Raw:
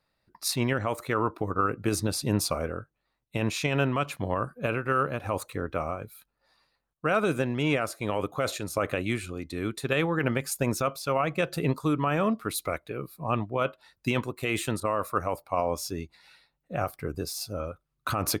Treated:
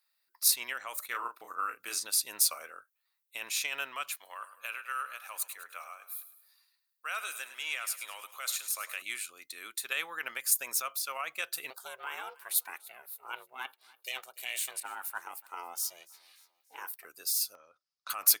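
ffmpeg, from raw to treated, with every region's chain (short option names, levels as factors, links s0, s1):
-filter_complex "[0:a]asettb=1/sr,asplit=3[s0][s1][s2];[s0]atrim=end=1.064[s3];[s1]atrim=start=1.06:end=2.05,asetpts=PTS-STARTPTS,afade=t=in:d=0.004:c=qsin,afade=t=out:st=0.986:d=0.004:c=qsin,agate=range=0.355:threshold=0.00501:ratio=16:release=100:detection=peak,acrossover=split=7400[s4][s5];[s5]acompressor=threshold=0.00398:ratio=4:attack=1:release=60[s6];[s4][s6]amix=inputs=2:normalize=0,asplit=2[s7][s8];[s8]adelay=34,volume=0.531[s9];[s7][s9]amix=inputs=2:normalize=0,atrim=end_sample=43659[s10];[s2]atrim=start=2.046[s11];[s3][s10]acrossfade=d=0.004:c1=hsin:c2=qsin[s12];[s12][s11]acrossfade=d=0.004:c1=qsin:c2=hsin,asettb=1/sr,asplit=3[s13][s14][s15];[s13]atrim=end=4.154[s16];[s14]atrim=start=4.15:end=9.02,asetpts=PTS-STARTPTS,afade=t=in:d=0.004:c=qsin,afade=t=out:st=4.866:d=0.004:c=qsin,highpass=f=1100:p=1,aecho=1:1:104|208|312|416|520:0.224|0.103|0.0474|0.0218|0.01,atrim=end_sample=214767[s17];[s15]atrim=start=9.016[s18];[s16][s17]acrossfade=d=0.004:c1=hsin:c2=qsin[s19];[s19][s18]acrossfade=d=0.004:c1=qsin:c2=hsin,asettb=1/sr,asplit=3[s20][s21][s22];[s20]atrim=end=11.704[s23];[s21]atrim=start=11.7:end=17.05,asetpts=PTS-STARTPTS,afade=t=in:d=0.004:c=qsin,afade=t=out:st=5.346:d=0.004:c=qsin,equalizer=f=1700:t=o:w=0.35:g=-3,aeval=exprs='val(0)*sin(2*PI*260*n/s)':c=same,aecho=1:1:290|580|870:0.0708|0.0333|0.0156,atrim=end_sample=235935[s24];[s22]atrim=start=17.046[s25];[s23][s24]acrossfade=d=0.004:c1=hsin:c2=qsin[s26];[s26][s25]acrossfade=d=0.004:c1=qsin:c2=hsin,asettb=1/sr,asplit=3[s27][s28][s29];[s27]atrim=end=17.554[s30];[s28]atrim=start=17.55:end=18.1,asetpts=PTS-STARTPTS,afade=t=in:d=0.004:c=qsin,afade=t=out:st=0.546:d=0.004:c=qsin,lowpass=f=5100:t=q:w=6.2,tiltshelf=f=680:g=8.5,acompressor=threshold=0.0251:ratio=10:attack=3.2:release=140:knee=1:detection=peak[s31];[s29]atrim=start=18.096[s32];[s30][s31]acrossfade=d=0.004:c1=hsin:c2=qsin[s33];[s33][s32]acrossfade=d=0.004:c1=qsin:c2=hsin,highpass=1300,aemphasis=mode=production:type=50fm,volume=0.631"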